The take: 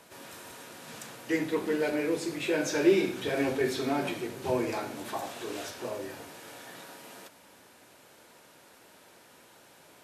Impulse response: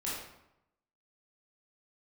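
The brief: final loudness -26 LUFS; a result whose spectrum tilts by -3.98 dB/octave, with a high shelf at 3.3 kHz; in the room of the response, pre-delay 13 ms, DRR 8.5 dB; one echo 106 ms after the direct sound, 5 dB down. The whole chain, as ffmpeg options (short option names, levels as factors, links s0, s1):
-filter_complex "[0:a]highshelf=f=3300:g=4,aecho=1:1:106:0.562,asplit=2[s0][s1];[1:a]atrim=start_sample=2205,adelay=13[s2];[s1][s2]afir=irnorm=-1:irlink=0,volume=0.251[s3];[s0][s3]amix=inputs=2:normalize=0,volume=1.26"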